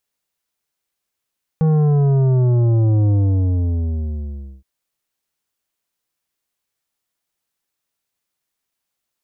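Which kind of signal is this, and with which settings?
bass drop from 160 Hz, over 3.02 s, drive 10 dB, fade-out 1.53 s, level −13 dB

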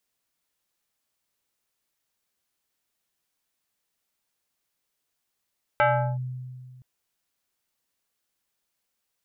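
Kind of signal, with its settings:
two-operator FM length 1.02 s, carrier 127 Hz, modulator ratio 5.68, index 2.3, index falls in 0.38 s linear, decay 1.98 s, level −15.5 dB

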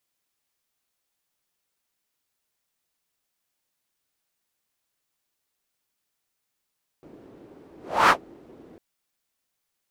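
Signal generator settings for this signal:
pass-by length 1.75 s, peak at 0:01.07, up 0.34 s, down 0.10 s, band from 340 Hz, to 1,200 Hz, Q 2.4, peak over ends 33.5 dB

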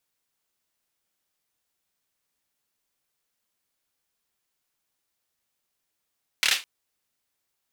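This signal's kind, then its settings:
synth clap length 0.21 s, bursts 4, apart 27 ms, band 2,800 Hz, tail 0.24 s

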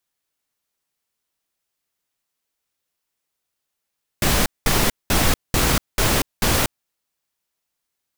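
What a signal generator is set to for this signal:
noise bursts pink, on 0.24 s, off 0.20 s, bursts 6, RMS −17.5 dBFS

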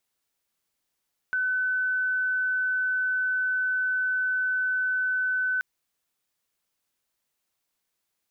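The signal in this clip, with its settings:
tone sine 1,510 Hz −23 dBFS 4.28 s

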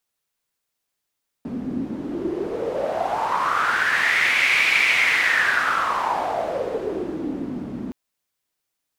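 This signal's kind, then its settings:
wind from filtered noise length 6.47 s, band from 240 Hz, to 2,300 Hz, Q 6, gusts 1, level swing 10.5 dB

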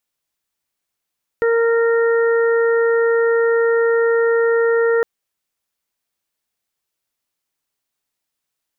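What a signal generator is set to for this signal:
steady harmonic partials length 3.61 s, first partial 462 Hz, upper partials −18/−11.5/−12 dB, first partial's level −13 dB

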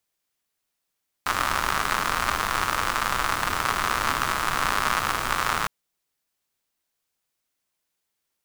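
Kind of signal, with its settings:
rain-like ticks over hiss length 4.41 s, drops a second 140, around 1,200 Hz, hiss −7.5 dB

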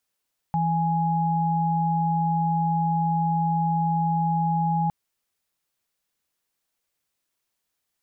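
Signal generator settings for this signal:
held notes E3/G#5 sine, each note −23 dBFS 4.36 s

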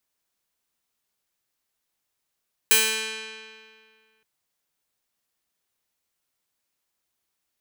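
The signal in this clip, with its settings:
Karplus-Strong string A3, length 1.52 s, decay 2.08 s, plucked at 0.32, bright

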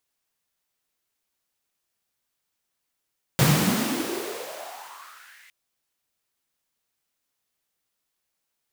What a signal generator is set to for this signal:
filter sweep on noise pink, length 2.11 s highpass, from 130 Hz, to 2,100 Hz, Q 5.5, exponential, gain ramp −34 dB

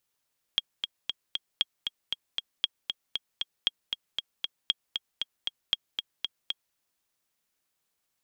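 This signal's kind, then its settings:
click track 233 BPM, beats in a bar 4, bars 6, 3,270 Hz, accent 6 dB −10.5 dBFS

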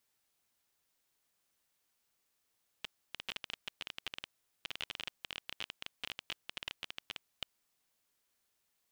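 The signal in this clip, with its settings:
Geiger counter clicks 19 per second −22.5 dBFS 4.66 s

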